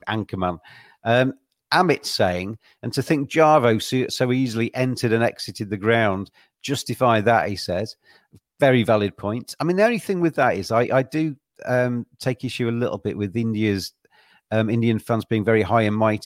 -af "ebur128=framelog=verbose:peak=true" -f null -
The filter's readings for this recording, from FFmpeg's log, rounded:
Integrated loudness:
  I:         -21.4 LUFS
  Threshold: -31.9 LUFS
Loudness range:
  LRA:         3.9 LU
  Threshold: -41.9 LUFS
  LRA low:   -24.2 LUFS
  LRA high:  -20.3 LUFS
True peak:
  Peak:       -3.2 dBFS